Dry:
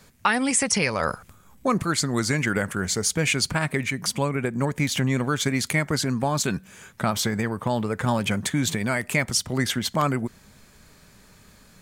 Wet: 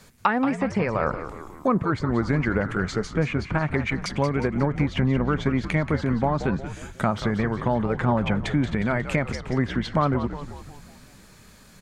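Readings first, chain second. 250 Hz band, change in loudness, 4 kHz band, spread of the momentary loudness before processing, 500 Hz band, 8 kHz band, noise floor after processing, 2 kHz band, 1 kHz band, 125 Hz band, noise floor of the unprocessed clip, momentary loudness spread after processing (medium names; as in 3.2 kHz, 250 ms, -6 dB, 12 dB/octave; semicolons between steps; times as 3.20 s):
+2.0 dB, -0.5 dB, -10.0 dB, 5 LU, +2.0 dB, -19.5 dB, -50 dBFS, -3.0 dB, +1.0 dB, +2.0 dB, -54 dBFS, 5 LU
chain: low-pass that closes with the level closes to 1.3 kHz, closed at -19.5 dBFS; frequency-shifting echo 180 ms, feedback 54%, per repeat -76 Hz, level -10.5 dB; trim +1.5 dB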